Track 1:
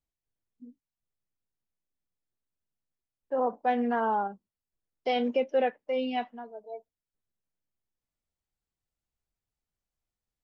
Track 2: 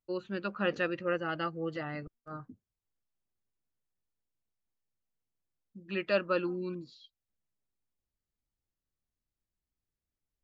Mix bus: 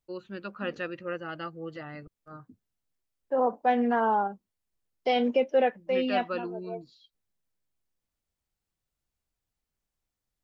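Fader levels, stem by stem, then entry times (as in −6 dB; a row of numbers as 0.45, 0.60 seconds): +2.5, −3.0 decibels; 0.00, 0.00 seconds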